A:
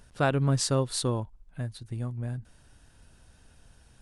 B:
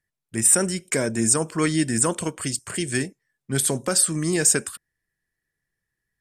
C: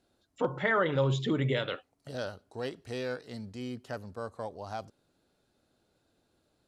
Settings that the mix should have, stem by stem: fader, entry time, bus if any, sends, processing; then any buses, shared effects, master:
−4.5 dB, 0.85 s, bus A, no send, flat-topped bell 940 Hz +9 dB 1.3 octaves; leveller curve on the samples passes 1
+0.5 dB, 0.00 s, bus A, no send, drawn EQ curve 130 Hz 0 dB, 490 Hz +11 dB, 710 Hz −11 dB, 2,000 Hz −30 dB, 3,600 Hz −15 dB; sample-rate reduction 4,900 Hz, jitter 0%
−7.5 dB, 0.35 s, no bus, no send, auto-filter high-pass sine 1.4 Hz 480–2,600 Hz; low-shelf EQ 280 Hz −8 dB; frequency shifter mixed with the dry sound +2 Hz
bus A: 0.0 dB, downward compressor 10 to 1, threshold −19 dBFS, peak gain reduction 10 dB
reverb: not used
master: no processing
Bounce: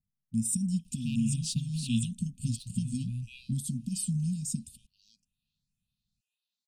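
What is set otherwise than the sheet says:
stem B: missing sample-rate reduction 4,900 Hz, jitter 0%
master: extra linear-phase brick-wall band-stop 250–2,400 Hz

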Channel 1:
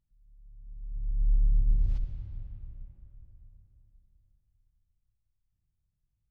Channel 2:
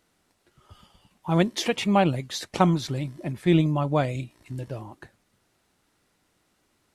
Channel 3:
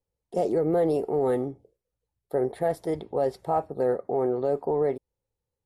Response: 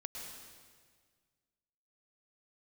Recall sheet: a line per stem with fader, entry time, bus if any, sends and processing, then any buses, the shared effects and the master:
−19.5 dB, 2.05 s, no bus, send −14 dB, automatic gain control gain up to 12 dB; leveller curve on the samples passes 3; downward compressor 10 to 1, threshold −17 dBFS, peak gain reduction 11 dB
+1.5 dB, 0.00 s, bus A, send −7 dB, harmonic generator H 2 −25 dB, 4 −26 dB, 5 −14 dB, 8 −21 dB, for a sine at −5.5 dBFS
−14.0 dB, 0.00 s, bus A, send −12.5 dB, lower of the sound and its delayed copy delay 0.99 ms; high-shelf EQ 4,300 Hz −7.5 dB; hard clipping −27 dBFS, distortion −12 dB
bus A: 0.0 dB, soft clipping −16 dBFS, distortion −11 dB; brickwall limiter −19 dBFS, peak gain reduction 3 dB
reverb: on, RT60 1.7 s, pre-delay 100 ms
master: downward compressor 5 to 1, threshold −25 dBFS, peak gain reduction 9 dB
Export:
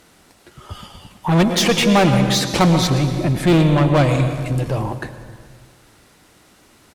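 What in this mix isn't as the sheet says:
stem 2 +1.5 dB → +9.5 dB
stem 3: muted
master: missing downward compressor 5 to 1, threshold −25 dBFS, peak gain reduction 9 dB

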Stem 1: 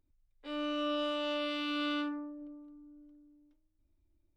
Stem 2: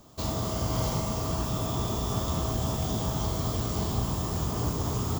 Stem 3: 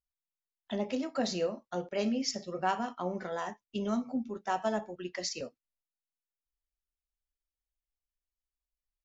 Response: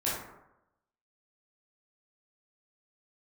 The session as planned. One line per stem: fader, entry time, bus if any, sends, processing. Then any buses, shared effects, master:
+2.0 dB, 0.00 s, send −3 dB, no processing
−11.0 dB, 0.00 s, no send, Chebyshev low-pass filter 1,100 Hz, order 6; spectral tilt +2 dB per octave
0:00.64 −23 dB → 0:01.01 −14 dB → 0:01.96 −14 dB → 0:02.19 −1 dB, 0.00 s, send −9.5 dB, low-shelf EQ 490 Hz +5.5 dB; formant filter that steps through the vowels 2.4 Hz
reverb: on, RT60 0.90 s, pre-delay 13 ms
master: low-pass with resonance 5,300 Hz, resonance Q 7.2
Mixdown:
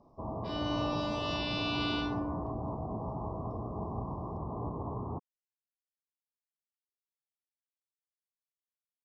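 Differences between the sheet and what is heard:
stem 1 +2.0 dB → −8.0 dB
stem 2 −11.0 dB → −2.5 dB
stem 3: muted

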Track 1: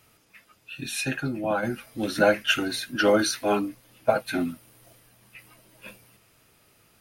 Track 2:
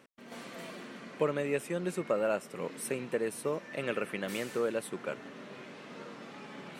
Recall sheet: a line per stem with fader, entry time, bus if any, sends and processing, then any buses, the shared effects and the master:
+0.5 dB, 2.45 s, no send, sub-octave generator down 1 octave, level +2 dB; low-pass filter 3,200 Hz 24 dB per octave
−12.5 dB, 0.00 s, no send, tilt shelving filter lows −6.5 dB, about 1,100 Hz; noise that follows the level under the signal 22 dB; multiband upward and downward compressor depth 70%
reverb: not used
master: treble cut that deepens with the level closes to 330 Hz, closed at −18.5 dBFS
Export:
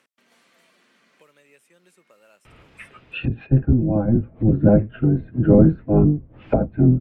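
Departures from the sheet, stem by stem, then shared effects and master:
stem 1 +0.5 dB → +11.0 dB
stem 2 −12.5 dB → −21.0 dB

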